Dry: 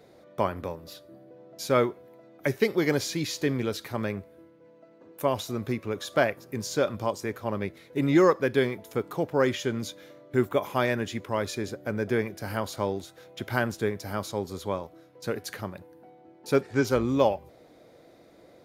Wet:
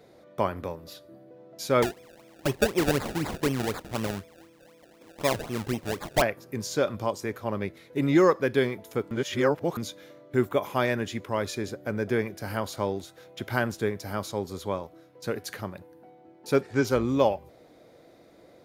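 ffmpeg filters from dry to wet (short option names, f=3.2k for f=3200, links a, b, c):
-filter_complex "[0:a]asettb=1/sr,asplit=3[a][b][c];[a]atrim=end=1.824[d];[b]atrim=start=1.82:end=6.22,asetpts=PTS-STARTPTS,afade=t=in:d=0.004:c=qsin,afade=t=out:st=4.396:d=0.004:c=qsin,acrusher=samples=29:mix=1:aa=0.000001:lfo=1:lforange=29:lforate=4[e];[c]atrim=start=6.216[f];[d][e]acrossfade=d=0.004:c1=hsin:c2=qsin[g];[g][f]acrossfade=d=0.004:c1=qsin:c2=hsin,asplit=3[h][i][j];[h]atrim=end=9.112[k];[i]atrim=start=9.108:end=9.772,asetpts=PTS-STARTPTS,areverse[l];[j]atrim=start=9.768[m];[k][l]acrossfade=d=0.004:c1=hsin:c2=hsin[n];[n][m]acrossfade=d=0.004:c1=hsin:c2=hsin"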